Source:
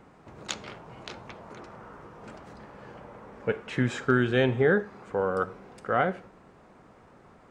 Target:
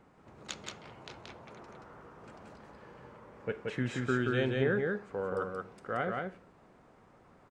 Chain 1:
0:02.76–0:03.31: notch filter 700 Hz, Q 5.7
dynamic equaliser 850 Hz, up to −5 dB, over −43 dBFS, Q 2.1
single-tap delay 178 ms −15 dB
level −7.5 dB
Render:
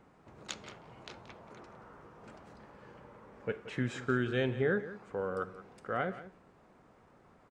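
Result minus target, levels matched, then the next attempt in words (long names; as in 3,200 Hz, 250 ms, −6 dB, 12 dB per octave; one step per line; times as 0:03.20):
echo-to-direct −12 dB
0:02.76–0:03.31: notch filter 700 Hz, Q 5.7
dynamic equaliser 850 Hz, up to −5 dB, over −43 dBFS, Q 2.1
single-tap delay 178 ms −3 dB
level −7.5 dB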